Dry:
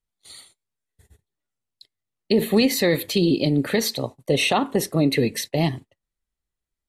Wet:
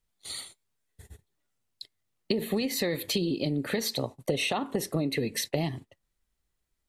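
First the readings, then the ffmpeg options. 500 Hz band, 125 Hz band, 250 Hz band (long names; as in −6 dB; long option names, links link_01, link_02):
−8.5 dB, −8.5 dB, −9.5 dB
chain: -af "acompressor=threshold=-31dB:ratio=10,volume=5.5dB"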